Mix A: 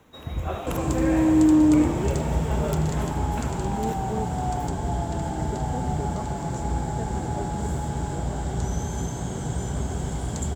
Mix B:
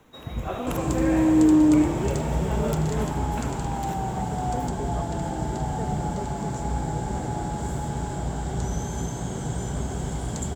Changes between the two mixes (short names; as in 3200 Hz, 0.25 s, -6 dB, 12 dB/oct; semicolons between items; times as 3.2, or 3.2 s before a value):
speech: entry -1.20 s; master: add bell 79 Hz -8 dB 0.27 oct